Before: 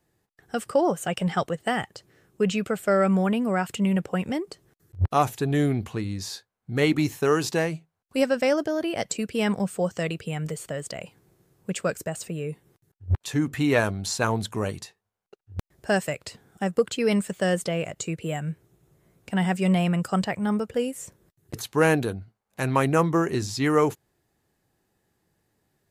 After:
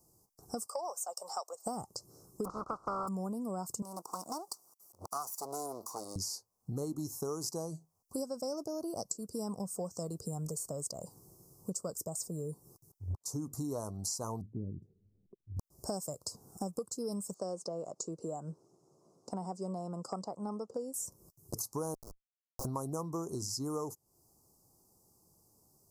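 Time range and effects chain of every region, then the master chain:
0.66–1.66 s: high-pass 610 Hz 24 dB/octave + peaking EQ 11 kHz -8.5 dB 0.33 oct
2.44–3.07 s: spectral contrast reduction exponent 0.33 + resonant low-pass 1.3 kHz, resonance Q 6.9
3.82–6.16 s: comb filter that takes the minimum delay 0.86 ms + high-pass 590 Hz
14.41–15.57 s: inverse Chebyshev low-pass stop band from 1.1 kHz, stop band 60 dB + upward compressor, threshold -52 dBFS
17.34–20.94 s: high-pass 280 Hz + distance through air 120 m
21.94–22.65 s: high-pass 610 Hz 24 dB/octave + Schmitt trigger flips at -31.5 dBFS
whole clip: elliptic band-stop 1.1–5.2 kHz, stop band 40 dB; treble shelf 2.6 kHz +11.5 dB; compression 5:1, threshold -38 dBFS; trim +1 dB

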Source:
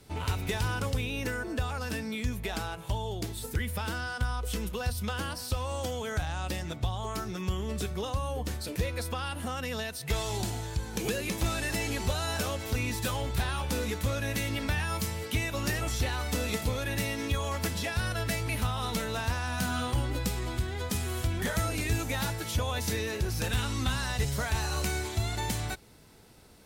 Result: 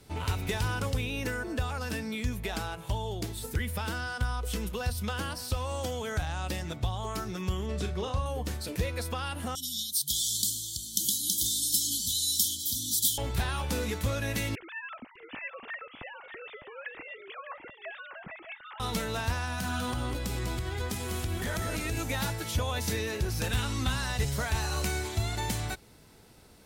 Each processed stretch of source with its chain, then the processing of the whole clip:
7.66–8.26 s: distance through air 52 m + doubling 39 ms -8 dB
9.55–13.18 s: brick-wall FIR band-stop 330–3000 Hz + tilt EQ +4 dB/octave
14.55–18.80 s: formants replaced by sine waves + FFT filter 100 Hz 0 dB, 450 Hz -17 dB, 690 Hz -13 dB + delay 605 ms -9 dB
19.44–21.97 s: compression, threshold -29 dBFS + delay 198 ms -5.5 dB
whole clip: none

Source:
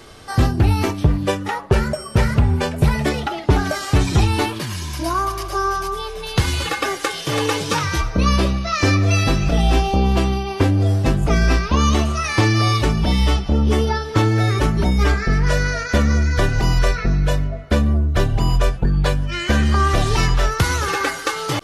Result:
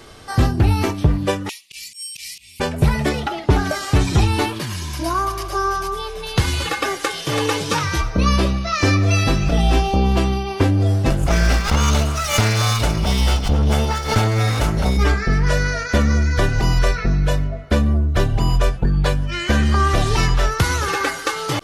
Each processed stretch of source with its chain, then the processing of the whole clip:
1.49–2.60 s: elliptic high-pass 2.4 kHz + treble shelf 3.7 kHz +10.5 dB + slow attack 107 ms
11.10–14.97 s: comb filter that takes the minimum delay 1.4 ms + treble shelf 6 kHz +6 dB + swell ahead of each attack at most 96 dB/s
whole clip: none

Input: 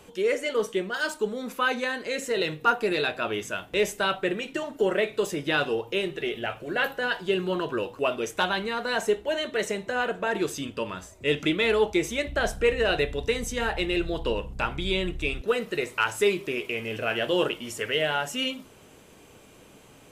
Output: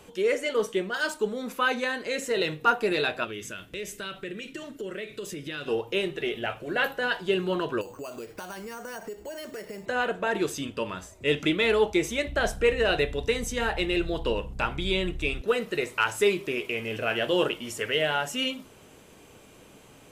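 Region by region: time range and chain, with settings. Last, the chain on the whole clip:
3.24–5.68 s: peaking EQ 810 Hz -14.5 dB 0.94 oct + compression 3:1, threshold -34 dBFS
7.81–9.86 s: treble shelf 2.8 kHz -6 dB + compression, threshold -35 dBFS + careless resampling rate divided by 6×, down filtered, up hold
whole clip: none

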